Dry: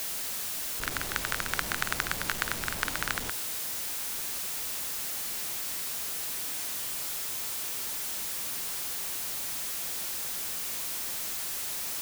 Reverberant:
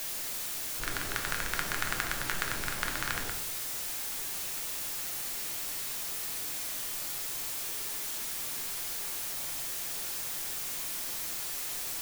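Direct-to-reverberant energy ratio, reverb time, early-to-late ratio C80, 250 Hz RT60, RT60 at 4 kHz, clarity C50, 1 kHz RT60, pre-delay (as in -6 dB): 2.0 dB, 0.65 s, 10.5 dB, 0.85 s, 0.45 s, 7.5 dB, 0.55 s, 3 ms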